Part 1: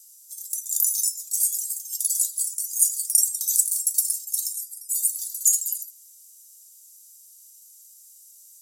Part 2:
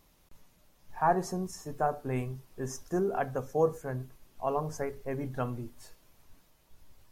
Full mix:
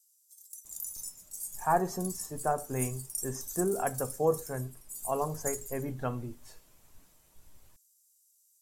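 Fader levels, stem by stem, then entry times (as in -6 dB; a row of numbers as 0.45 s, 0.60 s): -17.5 dB, -0.5 dB; 0.00 s, 0.65 s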